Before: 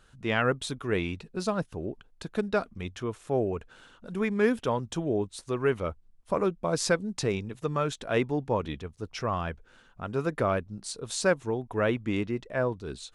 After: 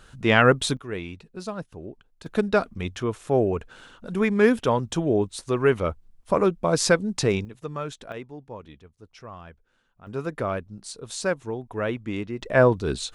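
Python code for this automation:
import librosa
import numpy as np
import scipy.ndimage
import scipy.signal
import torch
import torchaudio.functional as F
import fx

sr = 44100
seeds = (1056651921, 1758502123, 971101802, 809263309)

y = fx.gain(x, sr, db=fx.steps((0.0, 9.0), (0.77, -4.0), (2.26, 6.0), (7.45, -3.5), (8.12, -11.5), (10.07, -1.0), (12.42, 11.0)))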